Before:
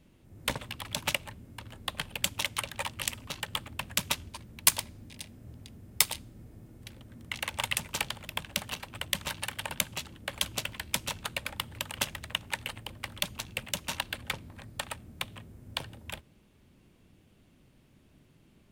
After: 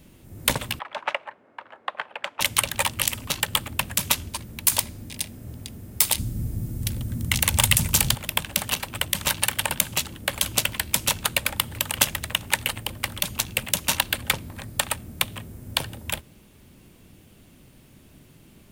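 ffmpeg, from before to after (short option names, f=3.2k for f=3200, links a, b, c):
-filter_complex "[0:a]asettb=1/sr,asplit=3[a][b][c];[a]atrim=end=0.794[d];[b]atrim=start=0.79:end=2.41,asetpts=PTS-STARTPTS,afade=t=in:d=0.004:c=qsin,afade=t=out:st=1.616:d=0.004:c=qsin,asuperpass=centerf=990:order=4:qfactor=0.8[e];[c]atrim=start=2.406[f];[d][e]acrossfade=d=0.004:c1=hsin:c2=qsin[g];[g][f]acrossfade=d=0.004:c1=qsin:c2=hsin,asettb=1/sr,asplit=3[h][i][j];[h]atrim=end=6.184[k];[i]atrim=start=6.18:end=8.15,asetpts=PTS-STARTPTS,afade=t=in:d=0.004:c=qsin,afade=t=out:st=1.966:d=0.004:c=qsin,bass=f=250:g=13,treble=f=4k:g=7[l];[j]atrim=start=8.146[m];[k][l]acrossfade=d=0.004:c1=hsin:c2=qsin[n];[n][m]acrossfade=d=0.004:c1=qsin:c2=hsin,highshelf=f=8k:g=11.5,alimiter=level_in=10.5dB:limit=-1dB:release=50:level=0:latency=1,volume=-1dB"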